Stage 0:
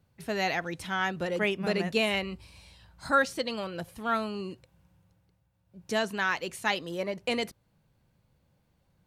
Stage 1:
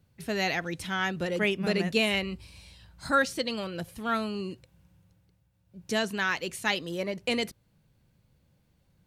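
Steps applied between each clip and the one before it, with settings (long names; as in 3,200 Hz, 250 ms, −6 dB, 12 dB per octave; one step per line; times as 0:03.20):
parametric band 880 Hz −5.5 dB 1.7 octaves
level +3 dB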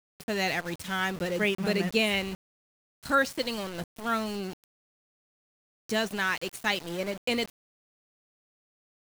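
centre clipping without the shift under −36.5 dBFS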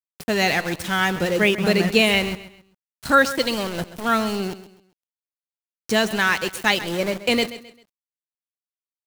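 repeating echo 132 ms, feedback 34%, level −15 dB
level +8.5 dB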